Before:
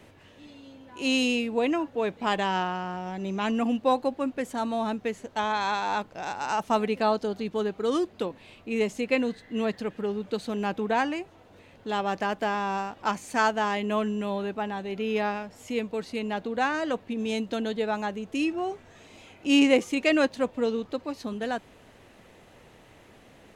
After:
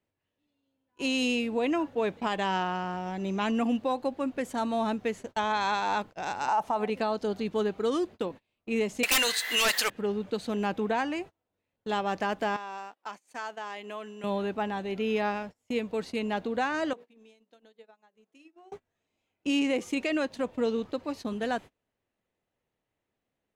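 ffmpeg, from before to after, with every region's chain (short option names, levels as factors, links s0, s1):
-filter_complex "[0:a]asettb=1/sr,asplit=3[s0][s1][s2];[s0]atrim=end=6.484[s3];[s1]atrim=start=6.48:end=6.9,asetpts=PTS-STARTPTS,afade=t=in:d=0.004:c=qsin,afade=t=out:st=0.416:d=0.004:c=qsin,equalizer=f=830:w=1.1:g=13.5,acompressor=threshold=0.2:ratio=2.5:attack=3.2:release=140:knee=1:detection=peak[s4];[s2]atrim=start=6.896[s5];[s3][s4]acrossfade=d=0.004:c1=hsin:c2=qsin[s6];[s6][s5]acrossfade=d=0.004:c1=qsin:c2=hsin,asettb=1/sr,asplit=3[s7][s8][s9];[s7]atrim=end=9.034[s10];[s8]atrim=start=9.03:end=9.9,asetpts=PTS-STARTPTS,afade=t=in:d=0.004:c=qsin,afade=t=out:st=0.866:d=0.004:c=qsin,highpass=1200,aemphasis=mode=production:type=75fm,aeval=exprs='0.237*sin(PI/2*8.91*val(0)/0.237)':c=same[s11];[s9]atrim=start=9.896[s12];[s10][s11]acrossfade=d=0.004:c1=hsin:c2=qsin[s13];[s13][s12]acrossfade=d=0.004:c1=qsin:c2=hsin,asettb=1/sr,asplit=3[s14][s15][s16];[s14]atrim=end=12.564[s17];[s15]atrim=start=12.56:end=14.24,asetpts=PTS-STARTPTS,afade=t=in:d=0.004:c=qsin,afade=t=out:st=1.676:d=0.004:c=qsin,highpass=290,lowshelf=f=430:g=-5.5,acompressor=threshold=0.0126:ratio=2.5:attack=3.2:release=140:knee=1:detection=peak[s18];[s16]atrim=start=14.236[s19];[s17][s18]acrossfade=d=0.004:c1=hsin:c2=qsin[s20];[s20][s19]acrossfade=d=0.004:c1=qsin:c2=hsin,asettb=1/sr,asplit=3[s21][s22][s23];[s21]atrim=end=16.934[s24];[s22]atrim=start=16.93:end=18.72,asetpts=PTS-STARTPTS,afade=t=in:d=0.004:c=qsin,afade=t=out:st=1.786:d=0.004:c=qsin,highpass=290,bandreject=f=60:t=h:w=6,bandreject=f=120:t=h:w=6,bandreject=f=180:t=h:w=6,bandreject=f=240:t=h:w=6,bandreject=f=300:t=h:w=6,bandreject=f=360:t=h:w=6,bandreject=f=420:t=h:w=6,bandreject=f=480:t=h:w=6,bandreject=f=540:t=h:w=6,acompressor=threshold=0.0112:ratio=16:attack=3.2:release=140:knee=1:detection=peak[s25];[s23]atrim=start=18.716[s26];[s24][s25]acrossfade=d=0.004:c1=hsin:c2=qsin[s27];[s27][s26]acrossfade=d=0.004:c1=qsin:c2=hsin,alimiter=limit=0.112:level=0:latency=1:release=185,agate=range=0.0282:threshold=0.01:ratio=16:detection=peak"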